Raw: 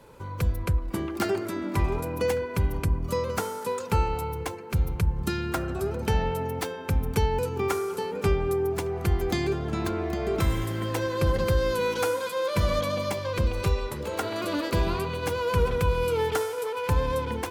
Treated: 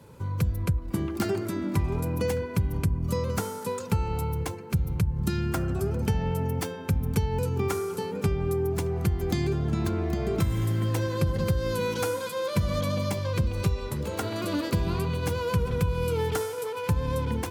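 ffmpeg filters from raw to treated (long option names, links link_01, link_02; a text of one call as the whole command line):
ffmpeg -i in.wav -filter_complex "[0:a]asettb=1/sr,asplit=3[link_01][link_02][link_03];[link_01]atrim=end=5.394[link_04];[link_02]atrim=start=5.39:end=6.67,asetpts=PTS-STARTPTS,afade=type=in:duration=0.004:curve=qsin,afade=type=out:start_time=1.276:duration=0.004:curve=qsin,bandreject=frequency=3900:width=12[link_05];[link_03]atrim=start=6.666[link_06];[link_04][link_05]acrossfade=duration=0.004:curve1=hsin:curve2=qsin[link_07];[link_07][link_06]acrossfade=duration=0.004:curve1=qsin:curve2=hsin,highpass=84,bass=frequency=250:gain=12,treble=frequency=4000:gain=4,acompressor=threshold=-18dB:ratio=6,volume=-3dB" out.wav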